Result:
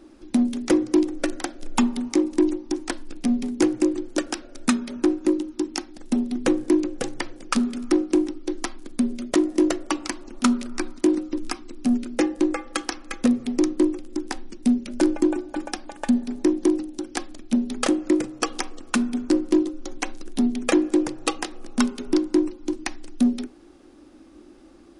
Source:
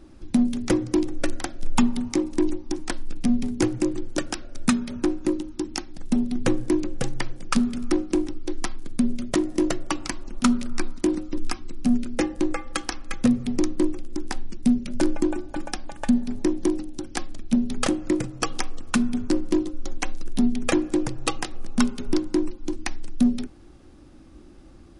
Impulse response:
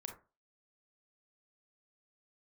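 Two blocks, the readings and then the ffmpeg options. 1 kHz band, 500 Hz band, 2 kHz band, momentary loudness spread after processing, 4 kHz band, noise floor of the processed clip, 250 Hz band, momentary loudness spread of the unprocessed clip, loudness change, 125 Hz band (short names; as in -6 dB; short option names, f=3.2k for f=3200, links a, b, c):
+1.0 dB, +3.0 dB, +1.0 dB, 11 LU, +1.0 dB, -49 dBFS, +2.0 dB, 10 LU, +2.0 dB, -9.0 dB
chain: -filter_complex "[0:a]lowshelf=f=200:t=q:w=1.5:g=-11,asplit=2[a][b];[1:a]atrim=start_sample=2205[c];[b][c]afir=irnorm=-1:irlink=0,volume=-15.5dB[d];[a][d]amix=inputs=2:normalize=0"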